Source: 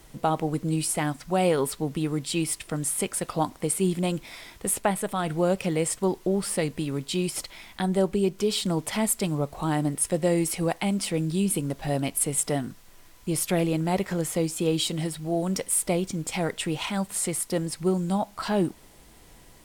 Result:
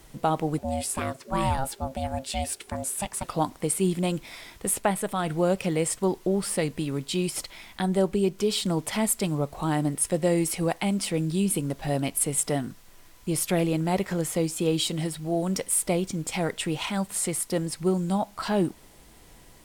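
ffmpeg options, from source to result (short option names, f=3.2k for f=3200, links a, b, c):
-filter_complex "[0:a]asettb=1/sr,asplit=3[a][b][c];[a]atrim=end=0.584[d];[b]atrim=start=0.58:end=3.24,asetpts=PTS-STARTPTS,afade=t=in:d=0.004:c=qsin,afade=t=out:st=2.656:d=0.004:c=qsin,aeval=exprs='val(0)*sin(2*PI*400*n/s)':c=same[e];[c]atrim=start=3.236[f];[d][e]acrossfade=d=0.004:c1=hsin:c2=qsin[g];[g][f]acrossfade=d=0.004:c1=qsin:c2=hsin"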